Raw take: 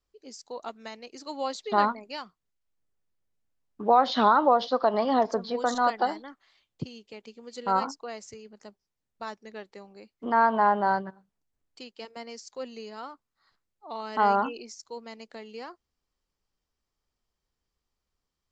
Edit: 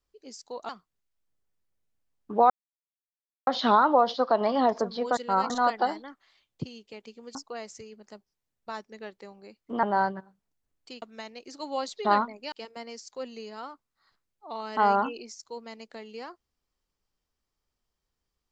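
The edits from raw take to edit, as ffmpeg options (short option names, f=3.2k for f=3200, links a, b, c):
-filter_complex "[0:a]asplit=9[a][b][c][d][e][f][g][h][i];[a]atrim=end=0.692[j];[b]atrim=start=2.188:end=4,asetpts=PTS-STARTPTS,afade=t=out:st=1.808:d=0.004:c=hsin,apad=pad_dur=0.97[k];[c]atrim=start=4:end=5.702,asetpts=PTS-STARTPTS,afade=t=in:d=0.004:c=hsin[l];[d]atrim=start=7.548:end=7.882[m];[e]atrim=start=5.698:end=7.552[n];[f]atrim=start=7.878:end=10.362[o];[g]atrim=start=10.728:end=11.922[p];[h]atrim=start=0.688:end=2.192[q];[i]atrim=start=11.918[r];[k][l]concat=n=2:v=0:a=1[s];[j][s]acrossfade=d=0.004:c1=hsin:c2=hsin[t];[t][m]acrossfade=d=0.004:c1=hsin:c2=hsin[u];[u][n]acrossfade=d=0.004:c1=hsin:c2=hsin[v];[v][o]acrossfade=d=0.004:c1=hsin:c2=hsin[w];[w][p]acrossfade=d=0.004:c1=hsin:c2=hsin[x];[x][q]acrossfade=d=0.004:c1=hsin:c2=hsin[y];[y][r]acrossfade=d=0.004:c1=hsin:c2=hsin"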